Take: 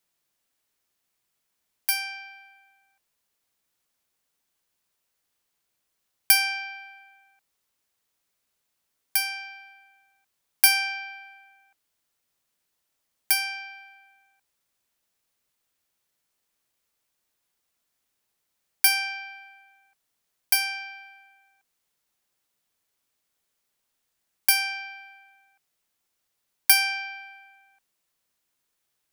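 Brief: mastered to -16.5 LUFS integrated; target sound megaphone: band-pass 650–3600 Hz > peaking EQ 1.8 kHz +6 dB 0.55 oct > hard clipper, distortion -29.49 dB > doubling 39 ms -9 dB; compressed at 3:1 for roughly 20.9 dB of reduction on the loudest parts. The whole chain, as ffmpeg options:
-filter_complex "[0:a]acompressor=threshold=0.00708:ratio=3,highpass=650,lowpass=3600,equalizer=f=1800:t=o:w=0.55:g=6,asoftclip=type=hard:threshold=0.0316,asplit=2[s0][s1];[s1]adelay=39,volume=0.355[s2];[s0][s2]amix=inputs=2:normalize=0,volume=23.7"

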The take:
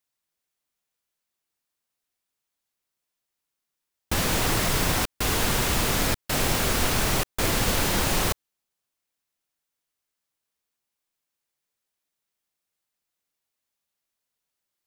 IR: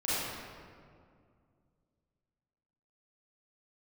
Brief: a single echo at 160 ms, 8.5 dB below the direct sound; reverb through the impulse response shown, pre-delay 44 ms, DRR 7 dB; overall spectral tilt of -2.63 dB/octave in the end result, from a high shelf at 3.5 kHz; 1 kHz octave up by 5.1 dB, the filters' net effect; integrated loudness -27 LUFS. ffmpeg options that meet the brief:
-filter_complex "[0:a]equalizer=f=1000:t=o:g=6,highshelf=f=3500:g=4,aecho=1:1:160:0.376,asplit=2[s0][s1];[1:a]atrim=start_sample=2205,adelay=44[s2];[s1][s2]afir=irnorm=-1:irlink=0,volume=0.158[s3];[s0][s3]amix=inputs=2:normalize=0,volume=0.447"

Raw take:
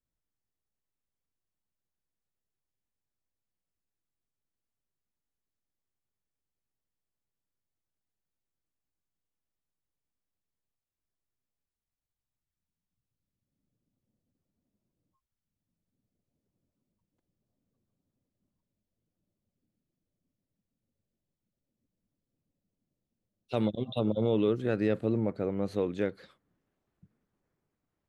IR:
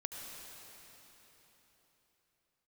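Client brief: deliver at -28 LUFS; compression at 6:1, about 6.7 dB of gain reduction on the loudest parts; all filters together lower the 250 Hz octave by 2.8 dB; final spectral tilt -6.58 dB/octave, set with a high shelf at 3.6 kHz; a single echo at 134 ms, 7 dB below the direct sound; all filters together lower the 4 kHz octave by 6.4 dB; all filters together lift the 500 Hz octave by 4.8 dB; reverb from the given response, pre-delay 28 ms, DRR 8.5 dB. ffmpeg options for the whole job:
-filter_complex "[0:a]equalizer=f=250:t=o:g=-6.5,equalizer=f=500:t=o:g=7.5,highshelf=f=3600:g=-3.5,equalizer=f=4000:t=o:g=-5.5,acompressor=threshold=0.0447:ratio=6,aecho=1:1:134:0.447,asplit=2[s0][s1];[1:a]atrim=start_sample=2205,adelay=28[s2];[s1][s2]afir=irnorm=-1:irlink=0,volume=0.398[s3];[s0][s3]amix=inputs=2:normalize=0,volume=1.5"

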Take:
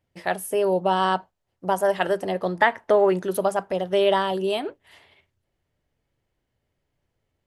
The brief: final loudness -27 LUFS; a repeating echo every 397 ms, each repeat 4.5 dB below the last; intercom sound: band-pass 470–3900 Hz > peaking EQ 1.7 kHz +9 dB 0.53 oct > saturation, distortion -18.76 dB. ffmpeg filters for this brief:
-af "highpass=470,lowpass=3900,equalizer=f=1700:t=o:w=0.53:g=9,aecho=1:1:397|794|1191|1588|1985|2382|2779|3176|3573:0.596|0.357|0.214|0.129|0.0772|0.0463|0.0278|0.0167|0.01,asoftclip=threshold=0.422,volume=0.596"

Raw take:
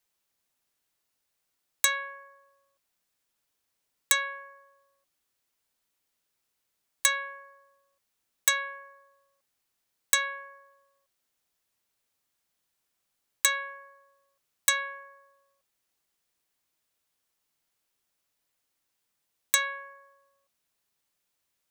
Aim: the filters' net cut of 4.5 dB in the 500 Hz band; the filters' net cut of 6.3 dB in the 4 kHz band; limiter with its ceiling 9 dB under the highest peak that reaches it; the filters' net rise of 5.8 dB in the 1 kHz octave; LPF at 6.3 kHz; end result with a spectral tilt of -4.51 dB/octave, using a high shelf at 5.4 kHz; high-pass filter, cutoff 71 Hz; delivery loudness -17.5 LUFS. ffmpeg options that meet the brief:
-af "highpass=71,lowpass=6300,equalizer=f=500:t=o:g=-7,equalizer=f=1000:t=o:g=8,equalizer=f=4000:t=o:g=-3.5,highshelf=f=5400:g=-9,volume=7.08,alimiter=limit=0.596:level=0:latency=1"

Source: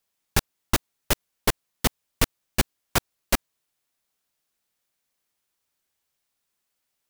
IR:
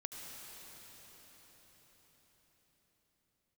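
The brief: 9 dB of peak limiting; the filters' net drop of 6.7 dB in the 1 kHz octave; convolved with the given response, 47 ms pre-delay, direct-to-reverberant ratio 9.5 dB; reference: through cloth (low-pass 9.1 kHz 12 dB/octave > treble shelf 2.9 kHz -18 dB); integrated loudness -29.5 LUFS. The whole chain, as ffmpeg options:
-filter_complex "[0:a]equalizer=f=1000:t=o:g=-6,alimiter=limit=0.188:level=0:latency=1,asplit=2[s0][s1];[1:a]atrim=start_sample=2205,adelay=47[s2];[s1][s2]afir=irnorm=-1:irlink=0,volume=0.398[s3];[s0][s3]amix=inputs=2:normalize=0,lowpass=9100,highshelf=f=2900:g=-18,volume=2.99"

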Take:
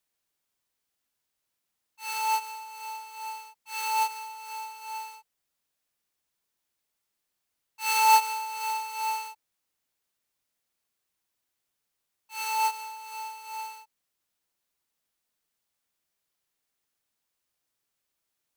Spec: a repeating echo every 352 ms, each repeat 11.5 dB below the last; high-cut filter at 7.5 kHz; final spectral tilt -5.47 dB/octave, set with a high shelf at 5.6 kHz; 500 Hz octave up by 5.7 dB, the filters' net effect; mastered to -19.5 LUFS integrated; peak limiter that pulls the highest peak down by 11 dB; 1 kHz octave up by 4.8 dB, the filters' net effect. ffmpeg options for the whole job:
-af "lowpass=7500,equalizer=f=500:t=o:g=6,equalizer=f=1000:t=o:g=3.5,highshelf=f=5600:g=4.5,alimiter=limit=0.15:level=0:latency=1,aecho=1:1:352|704|1056:0.266|0.0718|0.0194,volume=2.99"

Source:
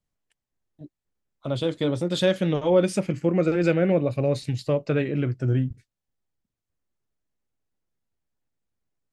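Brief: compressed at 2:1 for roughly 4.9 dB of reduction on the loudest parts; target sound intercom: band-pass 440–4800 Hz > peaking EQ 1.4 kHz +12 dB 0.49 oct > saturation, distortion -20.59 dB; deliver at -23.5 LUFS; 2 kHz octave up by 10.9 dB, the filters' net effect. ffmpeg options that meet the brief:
-af "equalizer=f=2000:t=o:g=6,acompressor=threshold=0.0708:ratio=2,highpass=440,lowpass=4800,equalizer=f=1400:t=o:w=0.49:g=12,asoftclip=threshold=0.158,volume=2"

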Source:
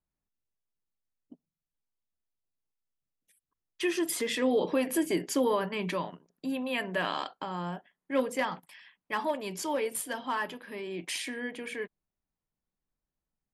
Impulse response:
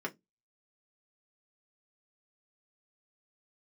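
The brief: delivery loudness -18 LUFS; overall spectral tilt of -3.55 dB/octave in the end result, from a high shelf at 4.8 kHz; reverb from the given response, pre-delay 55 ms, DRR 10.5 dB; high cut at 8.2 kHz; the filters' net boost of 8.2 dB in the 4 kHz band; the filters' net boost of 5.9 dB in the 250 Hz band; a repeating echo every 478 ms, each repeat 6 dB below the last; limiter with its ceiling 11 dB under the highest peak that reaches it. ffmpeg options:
-filter_complex "[0:a]lowpass=8200,equalizer=f=250:t=o:g=7,equalizer=f=4000:t=o:g=7,highshelf=f=4800:g=9,alimiter=limit=0.0668:level=0:latency=1,aecho=1:1:478|956|1434|1912|2390|2868:0.501|0.251|0.125|0.0626|0.0313|0.0157,asplit=2[s0][s1];[1:a]atrim=start_sample=2205,adelay=55[s2];[s1][s2]afir=irnorm=-1:irlink=0,volume=0.2[s3];[s0][s3]amix=inputs=2:normalize=0,volume=5.01"

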